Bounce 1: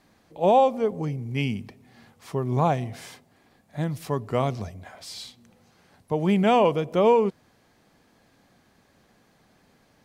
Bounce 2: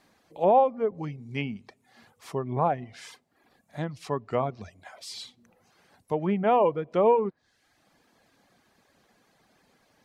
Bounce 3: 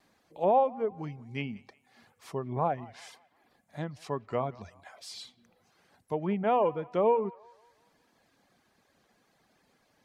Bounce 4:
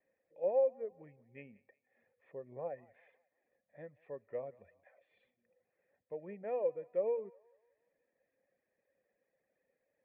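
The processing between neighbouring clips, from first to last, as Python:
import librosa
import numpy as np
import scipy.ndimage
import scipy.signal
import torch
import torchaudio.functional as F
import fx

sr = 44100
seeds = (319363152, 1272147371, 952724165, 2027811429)

y1 = fx.env_lowpass_down(x, sr, base_hz=1600.0, full_db=-20.0)
y1 = fx.dereverb_blind(y1, sr, rt60_s=0.72)
y1 = fx.low_shelf(y1, sr, hz=230.0, db=-8.0)
y2 = fx.echo_wet_bandpass(y1, sr, ms=181, feedback_pct=42, hz=1300.0, wet_db=-20.0)
y2 = fx.vibrato(y2, sr, rate_hz=0.65, depth_cents=13.0)
y2 = F.gain(torch.from_numpy(y2), -4.0).numpy()
y3 = fx.formant_cascade(y2, sr, vowel='e')
y3 = F.gain(torch.from_numpy(y3), -1.5).numpy()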